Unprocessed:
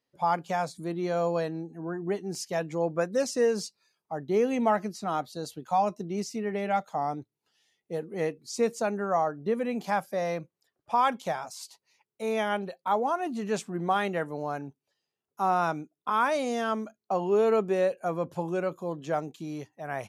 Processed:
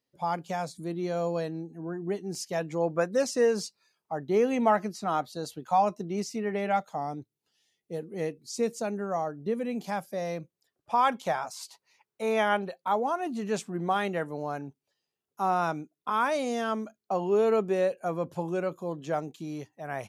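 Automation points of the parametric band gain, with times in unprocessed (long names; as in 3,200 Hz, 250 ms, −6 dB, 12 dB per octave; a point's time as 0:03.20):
parametric band 1,200 Hz 2.2 octaves
0:02.18 −5 dB
0:02.94 +2 dB
0:06.68 +2 dB
0:07.10 −6.5 dB
0:10.36 −6.5 dB
0:11.48 +5 dB
0:12.49 +5 dB
0:12.97 −1.5 dB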